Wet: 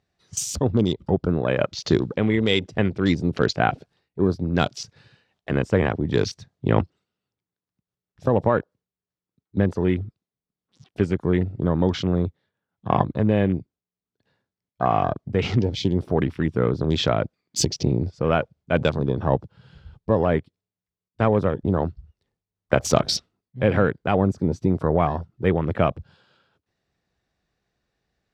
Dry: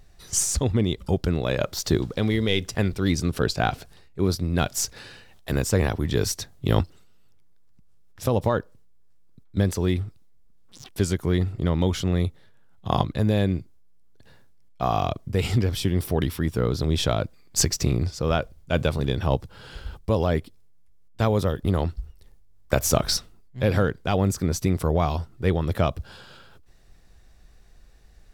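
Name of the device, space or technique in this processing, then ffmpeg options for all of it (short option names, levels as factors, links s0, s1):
over-cleaned archive recording: -af "highpass=120,lowpass=5200,afwtdn=0.0141,volume=1.5"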